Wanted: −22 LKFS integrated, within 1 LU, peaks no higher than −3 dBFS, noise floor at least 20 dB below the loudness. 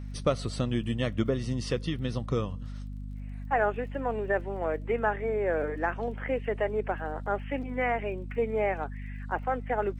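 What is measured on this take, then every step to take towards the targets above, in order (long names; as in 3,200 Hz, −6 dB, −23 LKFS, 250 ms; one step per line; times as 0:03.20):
crackle rate 27 per second; mains hum 50 Hz; hum harmonics up to 250 Hz; level of the hum −35 dBFS; integrated loudness −30.5 LKFS; sample peak −13.0 dBFS; target loudness −22.0 LKFS
→ click removal
hum removal 50 Hz, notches 5
level +8.5 dB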